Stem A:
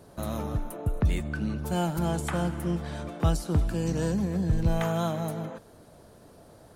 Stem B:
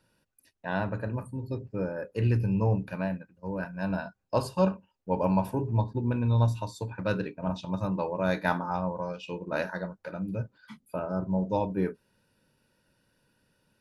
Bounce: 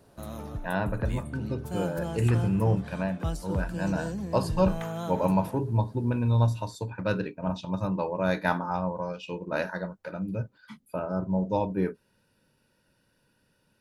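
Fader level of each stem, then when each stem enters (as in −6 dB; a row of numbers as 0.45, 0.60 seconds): −6.5, +1.0 decibels; 0.00, 0.00 seconds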